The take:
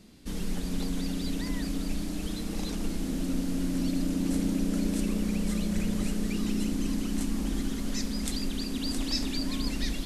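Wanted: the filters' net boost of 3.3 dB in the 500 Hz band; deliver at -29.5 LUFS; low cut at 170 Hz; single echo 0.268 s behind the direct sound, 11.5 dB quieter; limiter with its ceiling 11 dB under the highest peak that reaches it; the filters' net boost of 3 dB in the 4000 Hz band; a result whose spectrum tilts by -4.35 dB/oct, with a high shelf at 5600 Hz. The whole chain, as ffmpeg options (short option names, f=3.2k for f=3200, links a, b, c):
-af "highpass=170,equalizer=f=500:t=o:g=4.5,equalizer=f=4k:t=o:g=6.5,highshelf=f=5.6k:g=-6.5,alimiter=level_in=0.5dB:limit=-24dB:level=0:latency=1,volume=-0.5dB,aecho=1:1:268:0.266,volume=4.5dB"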